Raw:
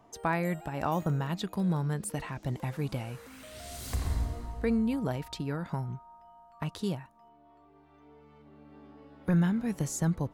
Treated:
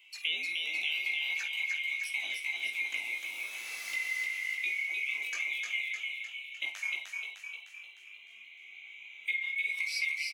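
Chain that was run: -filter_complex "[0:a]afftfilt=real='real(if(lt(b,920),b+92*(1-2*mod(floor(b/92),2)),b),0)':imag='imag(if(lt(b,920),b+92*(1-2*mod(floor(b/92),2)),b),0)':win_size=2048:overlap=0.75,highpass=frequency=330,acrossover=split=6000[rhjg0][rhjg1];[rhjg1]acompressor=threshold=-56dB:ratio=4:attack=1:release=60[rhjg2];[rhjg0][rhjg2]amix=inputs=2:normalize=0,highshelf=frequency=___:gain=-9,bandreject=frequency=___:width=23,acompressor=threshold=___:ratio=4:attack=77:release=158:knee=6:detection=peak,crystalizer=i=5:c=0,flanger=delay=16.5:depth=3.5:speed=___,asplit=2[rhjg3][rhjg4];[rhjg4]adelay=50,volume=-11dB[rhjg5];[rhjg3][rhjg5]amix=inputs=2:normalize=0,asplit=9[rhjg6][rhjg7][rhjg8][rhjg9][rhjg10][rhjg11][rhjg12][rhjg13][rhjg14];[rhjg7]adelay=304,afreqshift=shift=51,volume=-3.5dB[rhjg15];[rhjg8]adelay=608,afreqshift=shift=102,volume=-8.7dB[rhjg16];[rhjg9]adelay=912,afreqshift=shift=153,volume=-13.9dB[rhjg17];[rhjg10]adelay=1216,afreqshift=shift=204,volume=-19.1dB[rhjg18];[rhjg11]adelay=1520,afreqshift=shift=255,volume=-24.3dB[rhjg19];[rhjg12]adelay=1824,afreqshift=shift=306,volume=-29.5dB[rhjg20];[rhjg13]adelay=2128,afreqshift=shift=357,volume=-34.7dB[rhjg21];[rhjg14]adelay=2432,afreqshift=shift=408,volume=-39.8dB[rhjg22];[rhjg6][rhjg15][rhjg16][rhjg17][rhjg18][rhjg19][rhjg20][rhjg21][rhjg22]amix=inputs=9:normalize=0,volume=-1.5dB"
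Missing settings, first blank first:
5300, 7400, -40dB, 1.4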